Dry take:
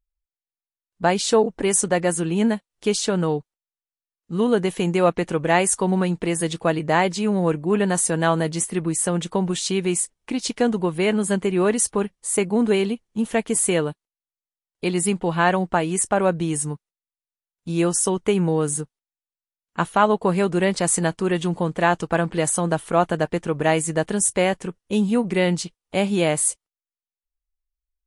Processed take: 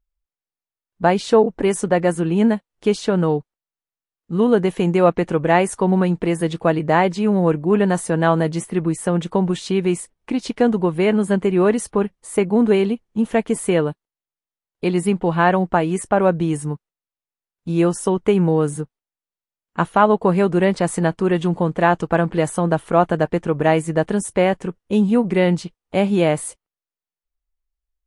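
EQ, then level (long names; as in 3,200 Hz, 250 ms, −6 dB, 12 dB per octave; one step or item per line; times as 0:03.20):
dynamic equaliser 7,400 Hz, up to −5 dB, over −35 dBFS, Q 1.1
high-shelf EQ 2,900 Hz −11 dB
+4.0 dB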